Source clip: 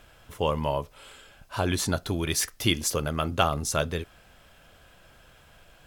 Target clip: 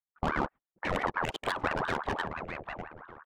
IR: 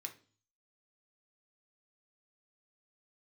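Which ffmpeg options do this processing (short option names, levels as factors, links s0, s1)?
-filter_complex "[0:a]highpass=150,afwtdn=0.01,agate=range=0.0355:threshold=0.00158:ratio=16:detection=peak,highshelf=f=3500:t=q:w=1.5:g=-12,asplit=2[s0][s1];[s1]acompressor=threshold=0.02:ratio=6,volume=0.891[s2];[s0][s2]amix=inputs=2:normalize=0,alimiter=limit=0.168:level=0:latency=1:release=15,atempo=1.8,adynamicsmooth=sensitivity=3.5:basefreq=560,asplit=2[s3][s4];[s4]adelay=601,lowpass=f=1600:p=1,volume=0.501,asplit=2[s5][s6];[s6]adelay=601,lowpass=f=1600:p=1,volume=0.33,asplit=2[s7][s8];[s8]adelay=601,lowpass=f=1600:p=1,volume=0.33,asplit=2[s9][s10];[s10]adelay=601,lowpass=f=1600:p=1,volume=0.33[s11];[s3][s5][s7][s9][s11]amix=inputs=5:normalize=0,aeval=exprs='val(0)*sin(2*PI*810*n/s+810*0.7/5.9*sin(2*PI*5.9*n/s))':c=same"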